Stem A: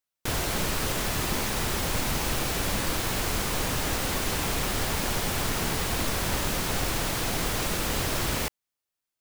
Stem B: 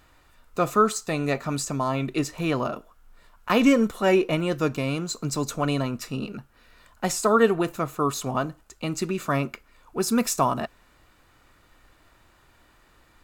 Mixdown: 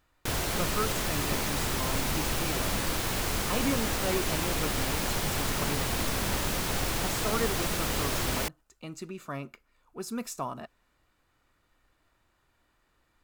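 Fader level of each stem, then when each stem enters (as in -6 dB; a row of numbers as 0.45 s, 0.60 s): -2.0 dB, -12.5 dB; 0.00 s, 0.00 s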